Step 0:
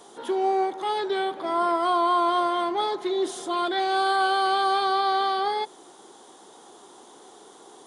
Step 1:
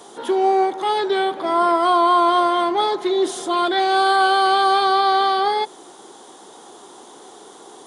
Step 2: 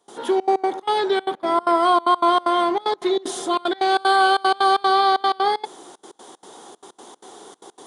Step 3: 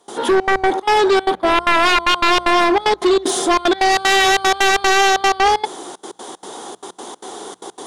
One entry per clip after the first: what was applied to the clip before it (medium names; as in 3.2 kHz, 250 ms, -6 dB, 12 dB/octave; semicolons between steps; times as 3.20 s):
high-pass 59 Hz; trim +6.5 dB
trance gate ".xxxx.x.xx" 189 bpm -24 dB
sine folder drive 10 dB, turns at -6.5 dBFS; hum notches 60/120/180 Hz; trim -3.5 dB